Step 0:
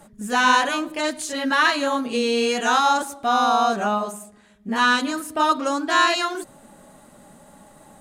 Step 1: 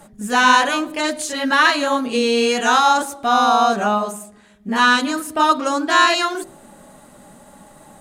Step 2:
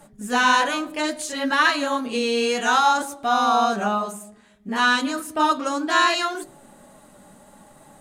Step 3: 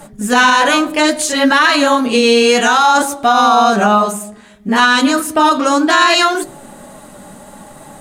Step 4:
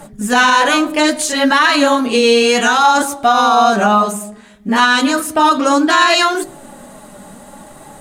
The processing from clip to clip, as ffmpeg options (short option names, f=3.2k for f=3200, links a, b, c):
-af "bandreject=f=55.21:t=h:w=4,bandreject=f=110.42:t=h:w=4,bandreject=f=165.63:t=h:w=4,bandreject=f=220.84:t=h:w=4,bandreject=f=276.05:t=h:w=4,bandreject=f=331.26:t=h:w=4,bandreject=f=386.47:t=h:w=4,bandreject=f=441.68:t=h:w=4,bandreject=f=496.89:t=h:w=4,bandreject=f=552.1:t=h:w=4,bandreject=f=607.31:t=h:w=4,bandreject=f=662.52:t=h:w=4,bandreject=f=717.73:t=h:w=4,bandreject=f=772.94:t=h:w=4,volume=4dB"
-af "flanger=delay=6.8:depth=3.6:regen=70:speed=0.62:shape=sinusoidal"
-af "alimiter=level_in=14dB:limit=-1dB:release=50:level=0:latency=1,volume=-1dB"
-af "aphaser=in_gain=1:out_gain=1:delay=5:decay=0.21:speed=0.35:type=triangular,volume=-1dB"